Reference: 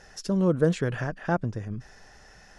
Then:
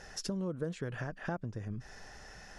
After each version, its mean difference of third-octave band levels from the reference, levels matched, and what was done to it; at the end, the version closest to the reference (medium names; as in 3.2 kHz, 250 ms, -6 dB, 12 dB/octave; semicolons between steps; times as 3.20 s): 6.5 dB: compression 4:1, threshold -37 dBFS, peak gain reduction 17 dB; trim +1 dB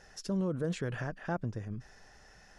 2.5 dB: peak limiter -18.5 dBFS, peak gain reduction 8 dB; trim -5.5 dB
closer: second